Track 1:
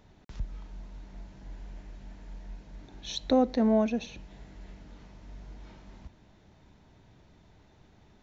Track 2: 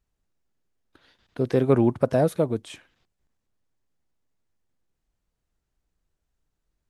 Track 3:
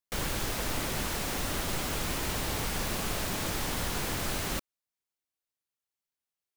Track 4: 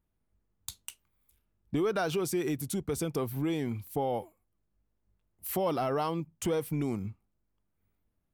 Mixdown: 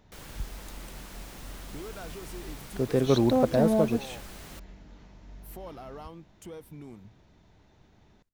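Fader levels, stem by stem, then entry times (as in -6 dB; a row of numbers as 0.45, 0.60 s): -1.0, -3.5, -13.5, -13.5 dB; 0.00, 1.40, 0.00, 0.00 s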